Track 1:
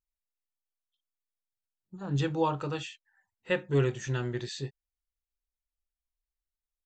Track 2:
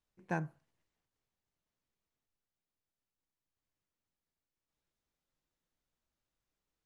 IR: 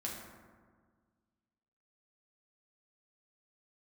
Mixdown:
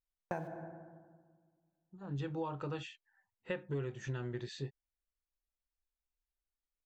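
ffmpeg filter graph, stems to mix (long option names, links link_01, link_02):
-filter_complex "[0:a]lowpass=frequency=2400:poles=1,volume=-2.5dB[link_01];[1:a]aeval=exprs='val(0)*gte(abs(val(0)),0.00282)':channel_layout=same,equalizer=frequency=610:width_type=o:width=1.1:gain=9,agate=range=-40dB:threshold=-40dB:ratio=16:detection=peak,volume=-3.5dB,asplit=3[link_02][link_03][link_04];[link_03]volume=-4.5dB[link_05];[link_04]apad=whole_len=302112[link_06];[link_01][link_06]sidechaincompress=threshold=-51dB:ratio=8:attack=5.5:release=1390[link_07];[2:a]atrim=start_sample=2205[link_08];[link_05][link_08]afir=irnorm=-1:irlink=0[link_09];[link_07][link_02][link_09]amix=inputs=3:normalize=0,acompressor=threshold=-35dB:ratio=6"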